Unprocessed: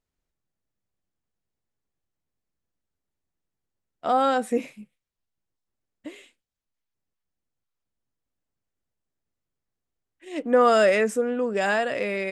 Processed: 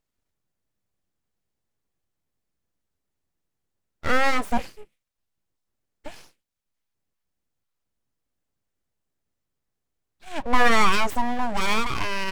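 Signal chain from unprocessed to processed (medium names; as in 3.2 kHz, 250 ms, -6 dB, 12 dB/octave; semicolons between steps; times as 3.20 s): full-wave rectifier; trim +3.5 dB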